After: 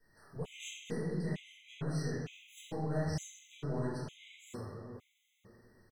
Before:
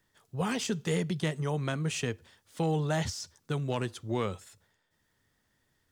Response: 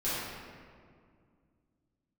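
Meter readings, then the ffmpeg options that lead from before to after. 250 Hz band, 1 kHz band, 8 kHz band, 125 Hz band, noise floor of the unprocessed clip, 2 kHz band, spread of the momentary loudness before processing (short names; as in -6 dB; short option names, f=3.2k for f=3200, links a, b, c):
-6.5 dB, -10.5 dB, -9.0 dB, -6.0 dB, -75 dBFS, -10.0 dB, 9 LU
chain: -filter_complex "[0:a]asplit=2[a][b];[b]adelay=355,lowpass=f=2.1k:p=1,volume=-23dB,asplit=2[c][d];[d]adelay=355,lowpass=f=2.1k:p=1,volume=0.51,asplit=2[e][f];[f]adelay=355,lowpass=f=2.1k:p=1,volume=0.51[g];[a][c][e][g]amix=inputs=4:normalize=0,asplit=2[h][i];[i]aeval=exprs='clip(val(0),-1,0.0133)':c=same,volume=-9dB[j];[h][j]amix=inputs=2:normalize=0,acompressor=threshold=-39dB:ratio=6[k];[1:a]atrim=start_sample=2205,asetrate=52920,aresample=44100[l];[k][l]afir=irnorm=-1:irlink=0,afftfilt=real='re*gt(sin(2*PI*1.1*pts/sr)*(1-2*mod(floor(b*sr/1024/2000),2)),0)':imag='im*gt(sin(2*PI*1.1*pts/sr)*(1-2*mod(floor(b*sr/1024/2000),2)),0)':win_size=1024:overlap=0.75,volume=-3dB"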